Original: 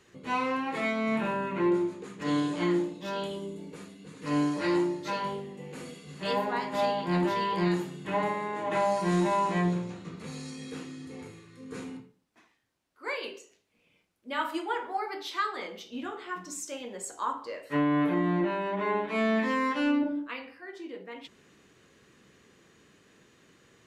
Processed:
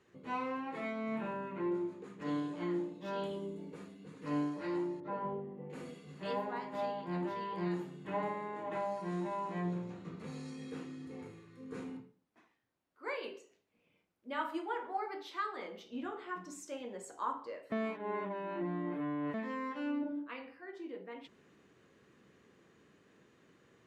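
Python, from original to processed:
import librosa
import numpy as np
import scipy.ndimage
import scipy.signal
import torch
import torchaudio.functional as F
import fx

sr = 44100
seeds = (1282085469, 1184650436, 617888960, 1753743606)

y = fx.lowpass(x, sr, hz=1200.0, slope=12, at=(5.0, 5.7))
y = fx.edit(y, sr, fx.reverse_span(start_s=17.72, length_s=1.62), tone=tone)
y = fx.low_shelf(y, sr, hz=60.0, db=-10.0)
y = fx.rider(y, sr, range_db=4, speed_s=0.5)
y = fx.high_shelf(y, sr, hz=2500.0, db=-10.5)
y = y * librosa.db_to_amplitude(-7.0)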